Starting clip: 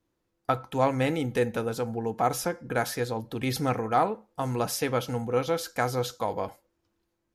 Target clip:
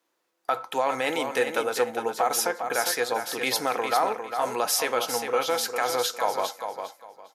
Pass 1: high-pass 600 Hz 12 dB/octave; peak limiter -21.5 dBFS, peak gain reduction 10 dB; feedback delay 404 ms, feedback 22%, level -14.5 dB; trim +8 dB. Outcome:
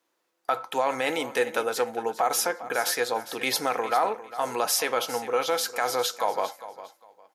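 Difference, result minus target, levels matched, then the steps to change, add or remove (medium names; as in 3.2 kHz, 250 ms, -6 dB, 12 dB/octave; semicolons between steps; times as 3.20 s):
echo-to-direct -7.5 dB
change: feedback delay 404 ms, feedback 22%, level -7 dB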